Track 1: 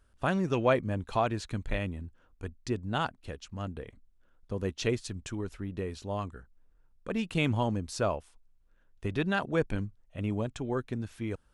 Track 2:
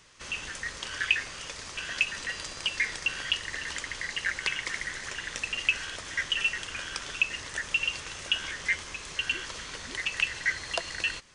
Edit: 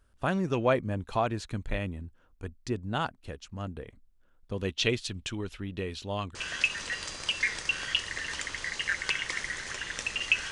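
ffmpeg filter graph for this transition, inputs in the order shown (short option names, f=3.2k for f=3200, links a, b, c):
-filter_complex "[0:a]asettb=1/sr,asplit=3[a][b][c];[a]atrim=end=4.524[d];[b]atrim=start=4.52:end=6.35,asetpts=PTS-STARTPTS,afade=t=in:d=0.004:c=qsin,afade=t=out:st=1.826:d=0.004:c=qsin,equalizer=f=3.2k:w=1.1:g=11.5[e];[c]atrim=start=6.346[f];[d][e]acrossfade=d=0.004:c1=hsin:c2=qsin[g];[g][f]acrossfade=d=0.004:c1=qsin:c2=hsin,apad=whole_dur=10.51,atrim=end=10.51,atrim=end=6.352[h];[1:a]atrim=start=1.718:end=5.88[i];[h][i]acrossfade=d=0.004:c1=hsin:c2=hsin"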